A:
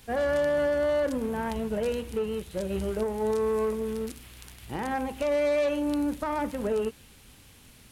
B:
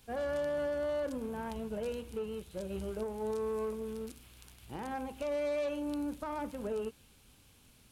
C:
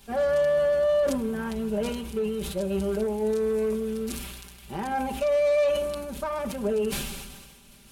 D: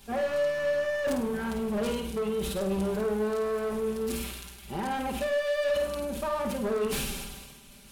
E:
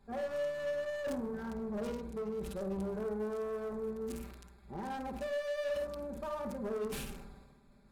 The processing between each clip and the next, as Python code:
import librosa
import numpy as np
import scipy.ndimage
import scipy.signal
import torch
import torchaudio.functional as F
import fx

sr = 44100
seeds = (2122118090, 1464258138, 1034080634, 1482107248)

y1 = fx.peak_eq(x, sr, hz=1900.0, db=-6.5, octaves=0.24)
y1 = y1 * librosa.db_to_amplitude(-8.5)
y2 = y1 + 0.94 * np.pad(y1, (int(5.1 * sr / 1000.0), 0))[:len(y1)]
y2 = fx.sustainer(y2, sr, db_per_s=38.0)
y2 = y2 * librosa.db_to_amplitude(6.0)
y3 = np.clip(10.0 ** (27.0 / 20.0) * y2, -1.0, 1.0) / 10.0 ** (27.0 / 20.0)
y3 = fx.room_flutter(y3, sr, wall_m=8.9, rt60_s=0.46)
y4 = fx.wiener(y3, sr, points=15)
y4 = y4 * librosa.db_to_amplitude(-8.0)